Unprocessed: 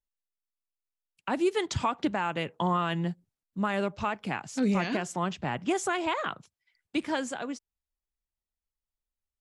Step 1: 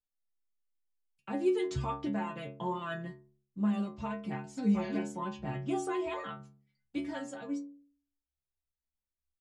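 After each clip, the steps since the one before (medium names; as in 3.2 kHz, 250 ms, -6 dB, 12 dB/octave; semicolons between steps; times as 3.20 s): bass shelf 490 Hz +11.5 dB; inharmonic resonator 67 Hz, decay 0.66 s, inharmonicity 0.008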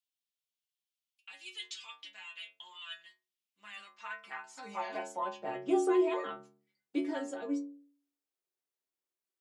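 high-pass sweep 3 kHz -> 360 Hz, 3.32–5.84 s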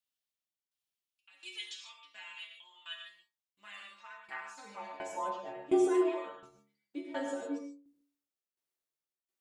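tremolo saw down 1.4 Hz, depth 90%; gated-style reverb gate 170 ms flat, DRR 1.5 dB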